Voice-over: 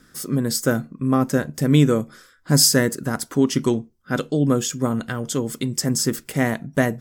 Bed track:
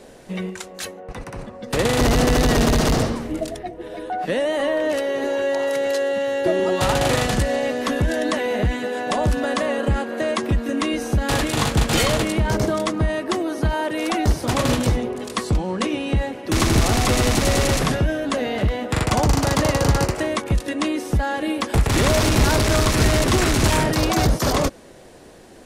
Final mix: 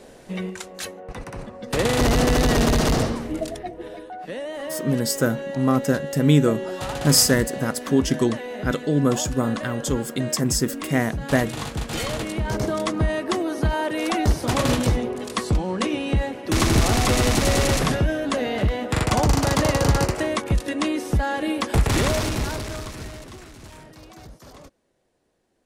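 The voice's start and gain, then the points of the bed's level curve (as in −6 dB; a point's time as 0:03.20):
4.55 s, −1.0 dB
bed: 0:03.87 −1.5 dB
0:04.11 −10 dB
0:11.86 −10 dB
0:12.98 −1 dB
0:21.90 −1 dB
0:23.50 −25.5 dB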